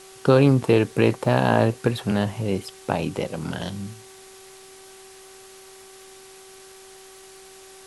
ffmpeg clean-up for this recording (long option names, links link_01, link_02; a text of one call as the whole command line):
ffmpeg -i in.wav -af "adeclick=threshold=4,bandreject=frequency=382.4:width_type=h:width=4,bandreject=frequency=764.8:width_type=h:width=4,bandreject=frequency=1147.2:width_type=h:width=4,bandreject=frequency=1529.6:width_type=h:width=4,bandreject=frequency=1912:width_type=h:width=4,afftdn=noise_reduction=20:noise_floor=-46" out.wav